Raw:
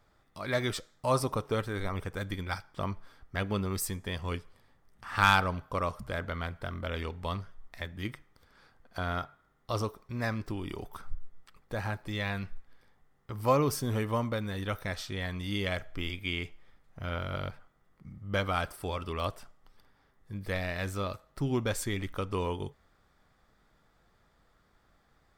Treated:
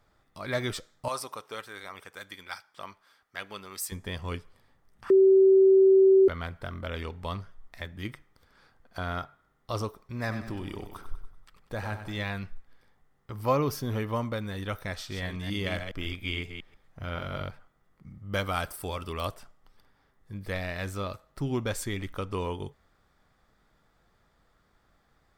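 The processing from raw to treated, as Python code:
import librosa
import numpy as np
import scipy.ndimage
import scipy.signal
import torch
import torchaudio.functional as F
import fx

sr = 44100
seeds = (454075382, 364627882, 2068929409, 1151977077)

y = fx.highpass(x, sr, hz=1400.0, slope=6, at=(1.08, 3.92))
y = fx.echo_feedback(y, sr, ms=96, feedback_pct=50, wet_db=-10.0, at=(10.27, 12.23), fade=0.02)
y = fx.peak_eq(y, sr, hz=8300.0, db=-9.5, octaves=0.47, at=(13.43, 14.16))
y = fx.reverse_delay(y, sr, ms=138, wet_db=-6.5, at=(14.95, 17.43))
y = fx.high_shelf(y, sr, hz=7700.0, db=11.0, at=(18.33, 19.34))
y = fx.edit(y, sr, fx.bleep(start_s=5.1, length_s=1.18, hz=384.0, db=-14.5), tone=tone)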